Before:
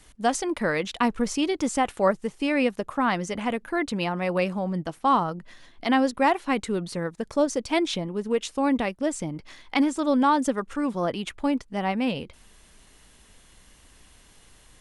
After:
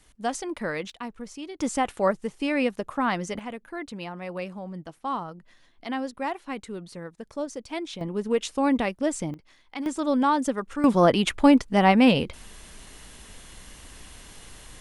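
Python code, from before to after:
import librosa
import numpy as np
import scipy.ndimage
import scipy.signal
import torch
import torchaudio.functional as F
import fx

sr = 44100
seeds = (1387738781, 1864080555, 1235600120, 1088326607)

y = fx.gain(x, sr, db=fx.steps((0.0, -5.0), (0.9, -13.0), (1.6, -1.5), (3.39, -9.0), (8.01, 0.5), (9.34, -11.5), (9.86, -1.5), (10.84, 8.5)))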